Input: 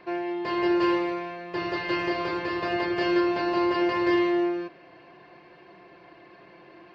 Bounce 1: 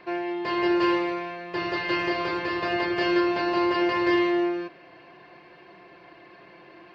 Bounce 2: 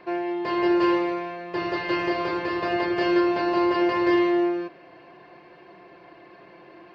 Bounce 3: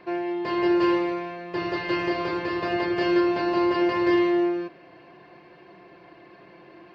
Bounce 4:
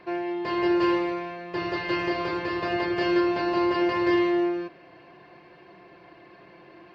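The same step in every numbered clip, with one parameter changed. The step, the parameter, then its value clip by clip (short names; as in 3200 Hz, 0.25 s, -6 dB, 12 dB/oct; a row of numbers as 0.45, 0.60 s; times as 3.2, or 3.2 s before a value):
bell, frequency: 2700, 590, 190, 74 Hz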